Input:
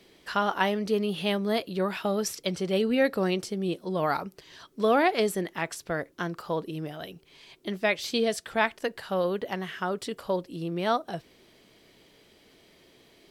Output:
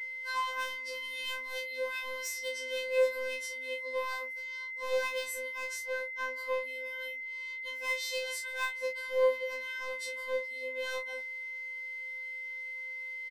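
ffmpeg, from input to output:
ffmpeg -i in.wav -filter_complex "[0:a]acrossover=split=420|2500[link_01][link_02][link_03];[link_01]acompressor=threshold=-40dB:ratio=6[link_04];[link_04][link_02][link_03]amix=inputs=3:normalize=0,aeval=exprs='val(0)+0.0158*sin(2*PI*2100*n/s)':channel_layout=same,asplit=2[link_05][link_06];[link_06]aeval=exprs='0.0422*(abs(mod(val(0)/0.0422+3,4)-2)-1)':channel_layout=same,volume=-4dB[link_07];[link_05][link_07]amix=inputs=2:normalize=0,asplit=2[link_08][link_09];[link_09]adelay=36,volume=-6dB[link_10];[link_08][link_10]amix=inputs=2:normalize=0,afftfilt=real='hypot(re,im)*cos(PI*b)':imag='0':win_size=1024:overlap=0.75,afftfilt=real='re*3.46*eq(mod(b,12),0)':imag='im*3.46*eq(mod(b,12),0)':win_size=2048:overlap=0.75,volume=-7.5dB" out.wav

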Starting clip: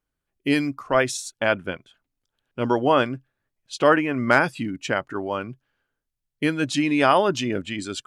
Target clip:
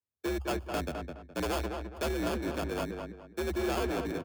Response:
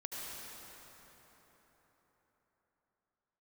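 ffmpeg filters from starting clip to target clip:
-filter_complex "[0:a]aeval=exprs='if(lt(val(0),0),0.447*val(0),val(0))':channel_layout=same,afwtdn=0.0398,acrossover=split=81|430|1400[link_01][link_02][link_03][link_04];[link_01]acompressor=threshold=-32dB:ratio=4[link_05];[link_02]acompressor=threshold=-28dB:ratio=4[link_06];[link_03]acompressor=threshold=-29dB:ratio=4[link_07];[link_04]acompressor=threshold=-40dB:ratio=4[link_08];[link_05][link_06][link_07][link_08]amix=inputs=4:normalize=0,atempo=1.9,acrusher=samples=23:mix=1:aa=0.000001,afreqshift=65,asoftclip=type=tanh:threshold=-27dB,asplit=2[link_09][link_10];[link_10]adelay=209,lowpass=frequency=2400:poles=1,volume=-5dB,asplit=2[link_11][link_12];[link_12]adelay=209,lowpass=frequency=2400:poles=1,volume=0.31,asplit=2[link_13][link_14];[link_14]adelay=209,lowpass=frequency=2400:poles=1,volume=0.31,asplit=2[link_15][link_16];[link_16]adelay=209,lowpass=frequency=2400:poles=1,volume=0.31[link_17];[link_11][link_13][link_15][link_17]amix=inputs=4:normalize=0[link_18];[link_09][link_18]amix=inputs=2:normalize=0,adynamicequalizer=threshold=0.00224:dfrequency=3900:dqfactor=0.7:tfrequency=3900:tqfactor=0.7:attack=5:release=100:ratio=0.375:range=2:mode=cutabove:tftype=highshelf"

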